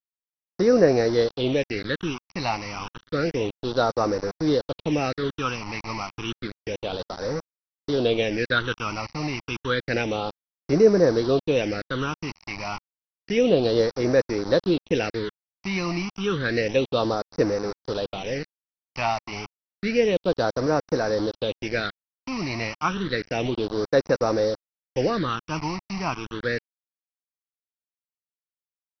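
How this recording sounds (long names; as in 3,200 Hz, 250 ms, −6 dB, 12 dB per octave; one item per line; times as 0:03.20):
a quantiser's noise floor 6 bits, dither none
phaser sweep stages 8, 0.3 Hz, lowest notch 450–3,100 Hz
MP2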